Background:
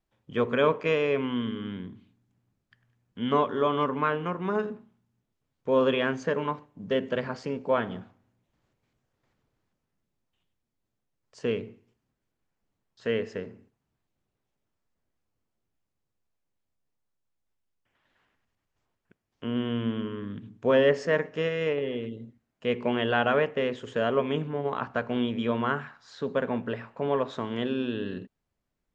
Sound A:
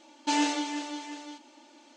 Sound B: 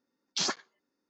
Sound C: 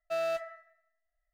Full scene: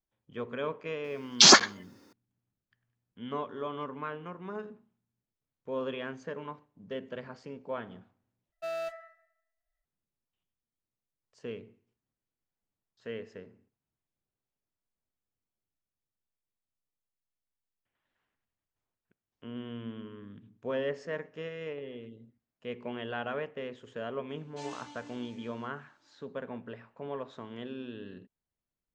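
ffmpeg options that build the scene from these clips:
-filter_complex "[0:a]volume=0.266[s0];[2:a]alimiter=level_in=22.4:limit=0.891:release=50:level=0:latency=1[s1];[1:a]flanger=delay=18:depth=2.7:speed=1.7[s2];[s0]asplit=2[s3][s4];[s3]atrim=end=8.524[s5];[3:a]atrim=end=1.33,asetpts=PTS-STARTPTS,volume=0.631[s6];[s4]atrim=start=9.846[s7];[s1]atrim=end=1.09,asetpts=PTS-STARTPTS,volume=0.596,afade=t=in:d=0.004:c=hsin,afade=t=out:st=1.086:d=0.004:c=hsin,adelay=1040[s8];[s2]atrim=end=1.96,asetpts=PTS-STARTPTS,volume=0.178,afade=t=in:d=0.004:c=hsin,afade=t=out:st=1.956:d=0.004:c=hsin,adelay=24290[s9];[s5][s6]acrossfade=d=0.004:c1=hsin:c2=hsin[s10];[s10][s7]acrossfade=d=0.004:c1=hsin:c2=hsin[s11];[s11][s8][s9]amix=inputs=3:normalize=0"

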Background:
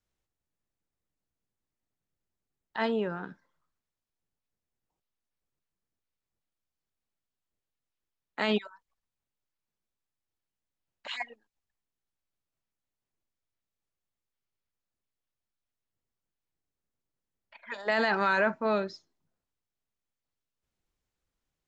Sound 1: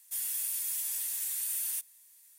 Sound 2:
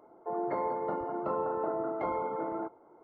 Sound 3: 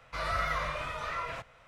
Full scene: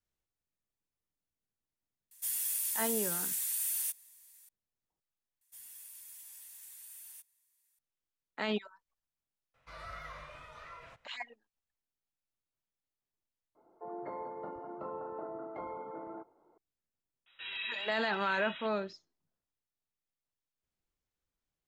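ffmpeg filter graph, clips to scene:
-filter_complex "[1:a]asplit=2[s0][s1];[3:a]asplit=2[s2][s3];[0:a]volume=0.501[s4];[s1]highshelf=f=2400:g=-4.5[s5];[s3]lowpass=f=3300:t=q:w=0.5098,lowpass=f=3300:t=q:w=0.6013,lowpass=f=3300:t=q:w=0.9,lowpass=f=3300:t=q:w=2.563,afreqshift=-3900[s6];[s4]asplit=2[s7][s8];[s7]atrim=end=5.414[s9];[s5]atrim=end=2.38,asetpts=PTS-STARTPTS,volume=0.224[s10];[s8]atrim=start=7.786[s11];[s0]atrim=end=2.38,asetpts=PTS-STARTPTS,volume=0.944,afade=t=in:d=0.004:c=hsin,afade=t=out:st=2.376:d=0.004:c=hsin,adelay=2110[s12];[s2]atrim=end=1.67,asetpts=PTS-STARTPTS,volume=0.188,afade=t=in:d=0.004:c=hsin,afade=t=out:st=1.666:d=0.004:c=hsin,adelay=420714S[s13];[2:a]atrim=end=3.03,asetpts=PTS-STARTPTS,volume=0.335,afade=t=in:d=0.004:c=hsin,afade=t=out:st=3.026:d=0.004:c=hsin,adelay=13550[s14];[s6]atrim=end=1.67,asetpts=PTS-STARTPTS,volume=0.376,afade=t=in:d=0.004:c=hsin,afade=t=out:st=1.666:d=0.004:c=hsin,adelay=17260[s15];[s9][s10]acrossfade=d=0.004:c1=hsin:c2=hsin[s16];[s16][s11]acrossfade=d=0.004:c1=hsin:c2=hsin[s17];[s17][s12][s13][s14][s15]amix=inputs=5:normalize=0"

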